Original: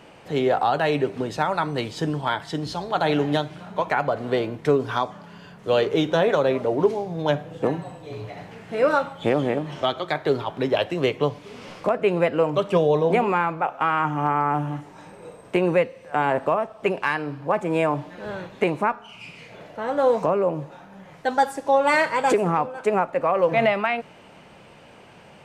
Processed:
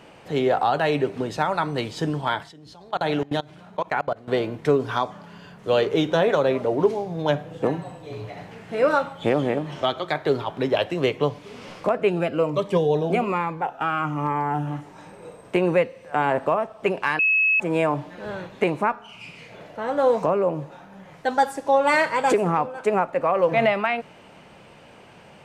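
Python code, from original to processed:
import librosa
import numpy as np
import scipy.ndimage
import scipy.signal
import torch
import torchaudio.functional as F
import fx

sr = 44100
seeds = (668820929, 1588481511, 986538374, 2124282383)

y = fx.level_steps(x, sr, step_db=23, at=(2.43, 4.28))
y = fx.notch_cascade(y, sr, direction='falling', hz=1.2, at=(12.09, 14.66), fade=0.02)
y = fx.edit(y, sr, fx.bleep(start_s=17.19, length_s=0.41, hz=2580.0, db=-16.0), tone=tone)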